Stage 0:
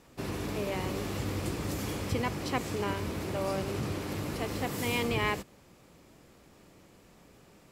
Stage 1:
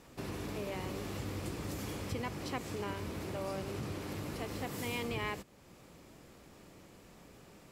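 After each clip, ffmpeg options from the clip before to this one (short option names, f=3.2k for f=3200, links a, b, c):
-af "acompressor=threshold=-50dB:ratio=1.5,volume=1dB"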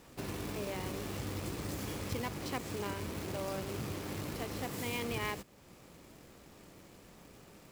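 -af "acrusher=bits=2:mode=log:mix=0:aa=0.000001"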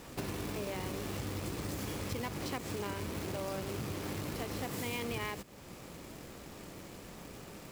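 -af "acompressor=threshold=-43dB:ratio=4,volume=7.5dB"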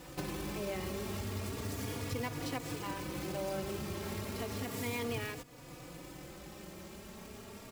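-filter_complex "[0:a]asplit=2[a][b];[b]adelay=3.5,afreqshift=0.33[c];[a][c]amix=inputs=2:normalize=1,volume=2.5dB"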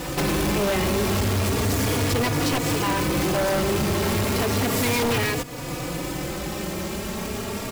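-af "aeval=exprs='0.0668*sin(PI/2*3.55*val(0)/0.0668)':c=same,volume=5dB"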